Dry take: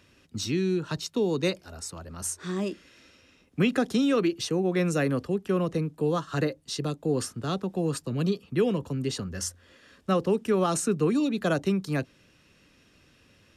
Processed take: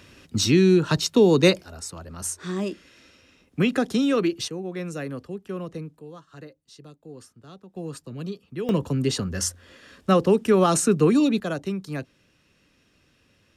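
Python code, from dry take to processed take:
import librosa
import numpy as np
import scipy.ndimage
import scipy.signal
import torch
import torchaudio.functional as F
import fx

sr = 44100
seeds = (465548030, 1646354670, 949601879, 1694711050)

y = fx.gain(x, sr, db=fx.steps((0.0, 9.5), (1.63, 2.0), (4.48, -6.5), (5.99, -16.0), (7.76, -6.5), (8.69, 6.0), (11.4, -3.0)))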